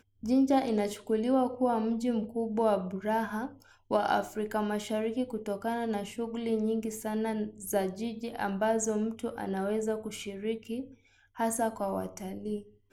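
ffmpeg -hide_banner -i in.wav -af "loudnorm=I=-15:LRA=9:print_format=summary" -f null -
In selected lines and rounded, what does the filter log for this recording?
Input Integrated:    -32.0 LUFS
Input True Peak:     -12.9 dBTP
Input LRA:             5.4 LU
Input Threshold:     -42.2 LUFS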